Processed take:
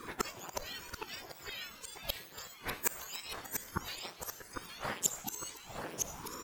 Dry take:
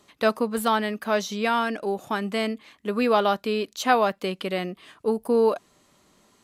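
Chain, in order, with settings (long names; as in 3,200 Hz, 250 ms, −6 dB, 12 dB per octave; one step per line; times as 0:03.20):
frequency axis turned over on the octave scale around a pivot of 1,800 Hz
low-shelf EQ 130 Hz +10 dB
in parallel at −6 dB: wrap-around overflow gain 17 dB
on the sum: dynamic equaliser 2,900 Hz, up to +5 dB, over −34 dBFS, Q 0.86
gate with flip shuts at −23 dBFS, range −34 dB
single-tap delay 285 ms −15 dB
on a send at −13 dB: convolution reverb RT60 0.70 s, pre-delay 38 ms
on the sum: delay with pitch and tempo change per echo 339 ms, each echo −2 semitones, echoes 3, each echo −6 dB
ring modulator whose carrier an LFO sweeps 420 Hz, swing 80%, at 1.1 Hz
level +11 dB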